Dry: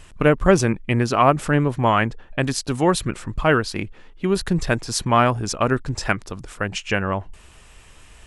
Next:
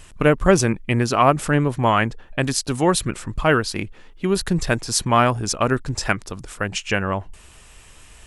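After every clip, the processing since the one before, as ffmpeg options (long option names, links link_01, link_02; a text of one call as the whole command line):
ffmpeg -i in.wav -af "highshelf=frequency=5700:gain=6.5" out.wav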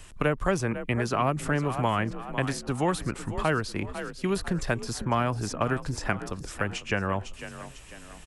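ffmpeg -i in.wav -filter_complex "[0:a]asplit=5[link_01][link_02][link_03][link_04][link_05];[link_02]adelay=498,afreqshift=38,volume=-16dB[link_06];[link_03]adelay=996,afreqshift=76,volume=-23.1dB[link_07];[link_04]adelay=1494,afreqshift=114,volume=-30.3dB[link_08];[link_05]adelay=1992,afreqshift=152,volume=-37.4dB[link_09];[link_01][link_06][link_07][link_08][link_09]amix=inputs=5:normalize=0,acrossover=split=230|500|2100[link_10][link_11][link_12][link_13];[link_10]acompressor=threshold=-26dB:ratio=4[link_14];[link_11]acompressor=threshold=-31dB:ratio=4[link_15];[link_12]acompressor=threshold=-23dB:ratio=4[link_16];[link_13]acompressor=threshold=-36dB:ratio=4[link_17];[link_14][link_15][link_16][link_17]amix=inputs=4:normalize=0,volume=-3dB" out.wav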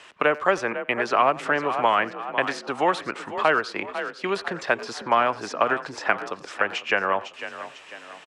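ffmpeg -i in.wav -filter_complex "[0:a]highpass=500,lowpass=3700,asplit=2[link_01][link_02];[link_02]adelay=90,highpass=300,lowpass=3400,asoftclip=type=hard:threshold=-19.5dB,volume=-19dB[link_03];[link_01][link_03]amix=inputs=2:normalize=0,volume=8dB" out.wav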